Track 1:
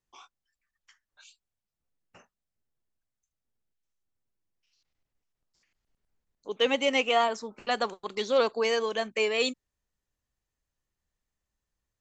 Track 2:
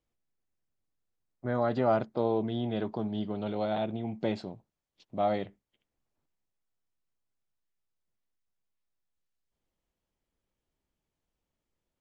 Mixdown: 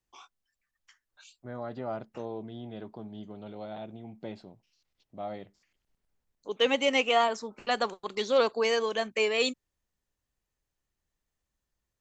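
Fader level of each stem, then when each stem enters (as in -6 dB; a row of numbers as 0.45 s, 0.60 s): 0.0 dB, -9.5 dB; 0.00 s, 0.00 s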